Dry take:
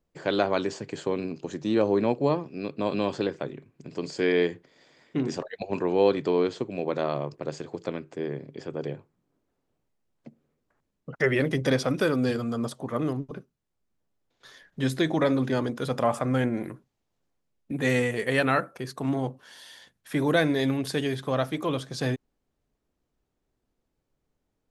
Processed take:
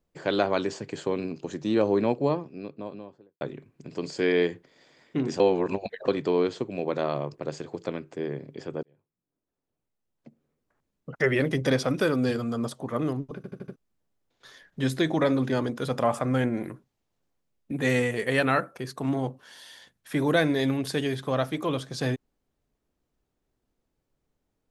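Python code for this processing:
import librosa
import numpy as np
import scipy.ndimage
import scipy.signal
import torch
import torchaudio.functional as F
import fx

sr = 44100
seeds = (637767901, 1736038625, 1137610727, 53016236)

y = fx.studio_fade_out(x, sr, start_s=2.01, length_s=1.4)
y = fx.edit(y, sr, fx.reverse_span(start_s=5.4, length_s=0.68),
    fx.fade_in_span(start_s=8.83, length_s=2.31),
    fx.stutter_over(start_s=13.36, slice_s=0.08, count=5), tone=tone)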